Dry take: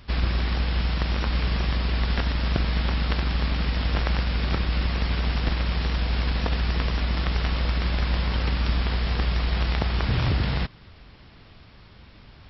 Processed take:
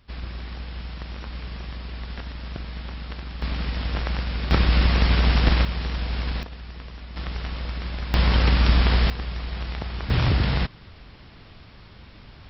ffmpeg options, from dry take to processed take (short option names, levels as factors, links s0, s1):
-af "asetnsamples=n=441:p=0,asendcmd='3.42 volume volume -2.5dB;4.51 volume volume 6dB;5.65 volume volume -2.5dB;6.43 volume volume -14dB;7.16 volume volume -6dB;8.14 volume volume 6dB;9.1 volume volume -6.5dB;10.1 volume volume 2.5dB',volume=0.316"